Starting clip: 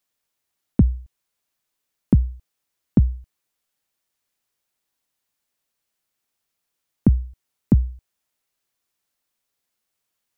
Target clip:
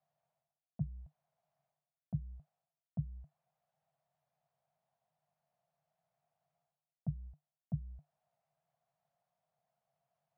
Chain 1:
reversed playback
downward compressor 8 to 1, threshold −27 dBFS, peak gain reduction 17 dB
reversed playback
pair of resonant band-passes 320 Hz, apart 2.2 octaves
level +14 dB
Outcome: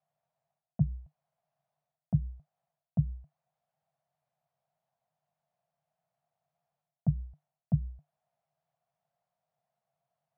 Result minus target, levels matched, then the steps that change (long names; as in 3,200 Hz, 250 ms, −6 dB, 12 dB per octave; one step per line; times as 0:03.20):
downward compressor: peak gain reduction −10 dB
change: downward compressor 8 to 1, threshold −38.5 dBFS, peak gain reduction 27 dB